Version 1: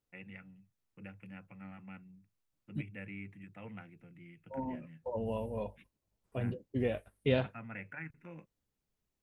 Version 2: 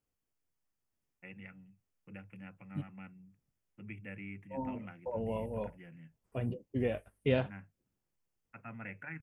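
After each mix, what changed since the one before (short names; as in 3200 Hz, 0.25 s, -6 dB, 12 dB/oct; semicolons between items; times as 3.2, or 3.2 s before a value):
first voice: entry +1.10 s; master: add bell 3900 Hz -9 dB 0.27 oct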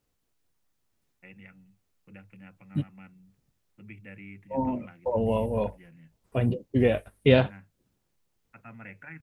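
second voice +10.5 dB; master: add bell 3900 Hz +9 dB 0.27 oct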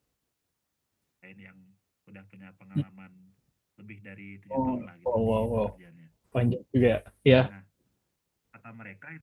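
master: add HPF 46 Hz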